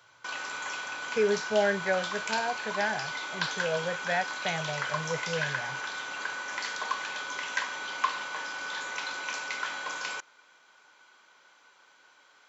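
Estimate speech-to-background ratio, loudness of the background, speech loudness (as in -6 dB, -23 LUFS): 2.0 dB, -33.5 LUFS, -31.5 LUFS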